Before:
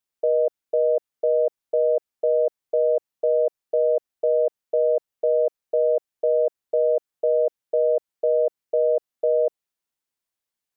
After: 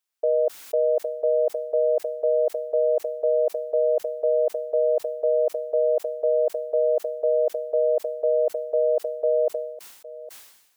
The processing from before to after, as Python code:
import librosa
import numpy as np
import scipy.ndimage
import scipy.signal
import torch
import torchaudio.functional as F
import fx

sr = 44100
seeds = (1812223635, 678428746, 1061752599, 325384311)

y = fx.low_shelf(x, sr, hz=410.0, db=-11.5)
y = y + 10.0 ** (-18.0 / 20.0) * np.pad(y, (int(810 * sr / 1000.0), 0))[:len(y)]
y = fx.sustainer(y, sr, db_per_s=61.0)
y = F.gain(torch.from_numpy(y), 3.0).numpy()